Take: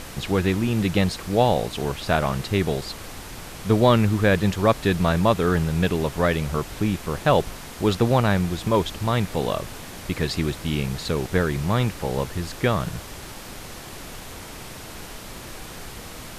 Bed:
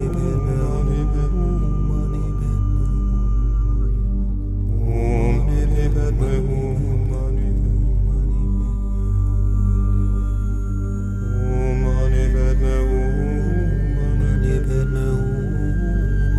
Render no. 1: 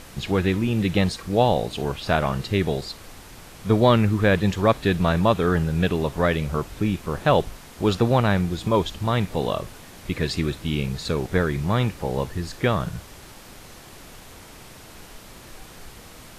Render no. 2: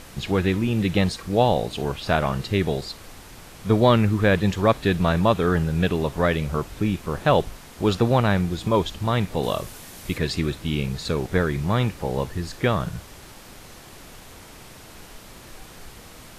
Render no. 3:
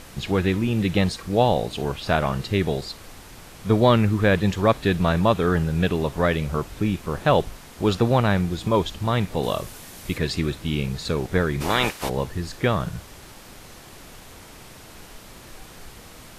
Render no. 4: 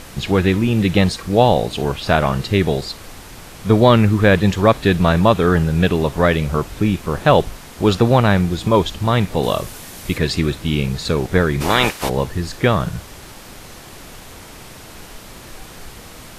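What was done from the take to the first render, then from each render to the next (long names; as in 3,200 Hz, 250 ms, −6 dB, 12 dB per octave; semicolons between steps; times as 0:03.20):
noise reduction from a noise print 6 dB
0:09.43–0:10.18: high-shelf EQ 5,300 Hz +8.5 dB
0:11.60–0:12.08: ceiling on every frequency bin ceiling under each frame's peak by 23 dB
level +6 dB; brickwall limiter −1 dBFS, peak gain reduction 1.5 dB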